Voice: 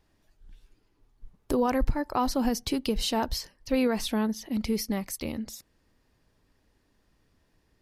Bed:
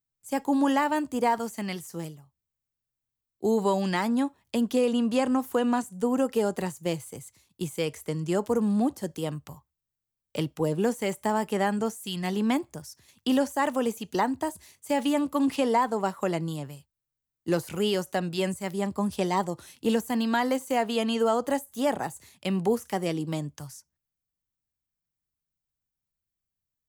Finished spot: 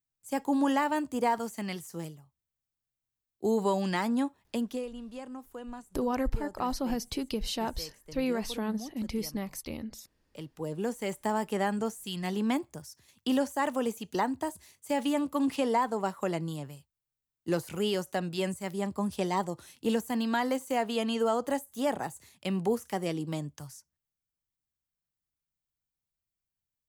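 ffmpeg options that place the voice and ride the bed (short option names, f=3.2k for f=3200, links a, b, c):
-filter_complex "[0:a]adelay=4450,volume=-5dB[a];[1:a]volume=11dB,afade=t=out:st=4.45:d=0.45:silence=0.188365,afade=t=in:st=10.28:d=0.96:silence=0.199526[b];[a][b]amix=inputs=2:normalize=0"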